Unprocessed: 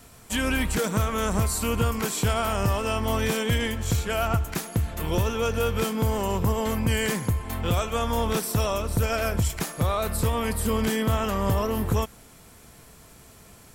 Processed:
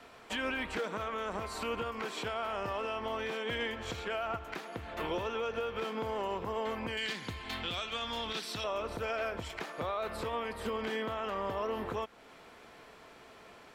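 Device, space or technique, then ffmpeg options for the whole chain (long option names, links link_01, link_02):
DJ mixer with the lows and highs turned down: -filter_complex "[0:a]asettb=1/sr,asplit=3[link_01][link_02][link_03];[link_01]atrim=end=6.974[link_04];[link_02]atrim=start=6.97:end=8.64,asetpts=PTS-STARTPTS,afade=type=in:duration=0.004:curve=qsin,afade=type=out:start_time=1.666:duration=0.004:curve=qsin,equalizer=frequency=500:width_type=o:width=1:gain=-8,equalizer=frequency=1000:width_type=o:width=1:gain=-5,equalizer=frequency=4000:width_type=o:width=1:gain=11,equalizer=frequency=8000:width_type=o:width=1:gain=4[link_05];[link_03]atrim=start=8.636[link_06];[link_04][link_05]acrossfade=duration=0.004:curve1=hsin:curve2=qsin[link_07];[link_07][link_06]acrossfade=duration=0.004:curve1=qsin:curve2=hsin,acrossover=split=290 4100:gain=0.126 1 0.0708[link_08][link_09][link_10];[link_08][link_09][link_10]amix=inputs=3:normalize=0,alimiter=level_in=3.5dB:limit=-24dB:level=0:latency=1:release=285,volume=-3.5dB,volume=1.5dB"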